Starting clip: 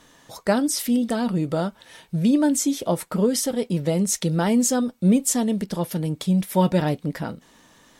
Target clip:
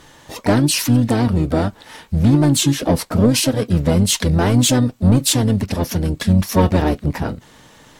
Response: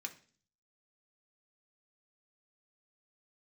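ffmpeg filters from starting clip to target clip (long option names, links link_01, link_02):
-filter_complex "[0:a]asoftclip=type=tanh:threshold=-16dB,asplit=3[link_01][link_02][link_03];[link_02]asetrate=22050,aresample=44100,atempo=2,volume=0dB[link_04];[link_03]asetrate=52444,aresample=44100,atempo=0.840896,volume=-10dB[link_05];[link_01][link_04][link_05]amix=inputs=3:normalize=0,volume=5dB"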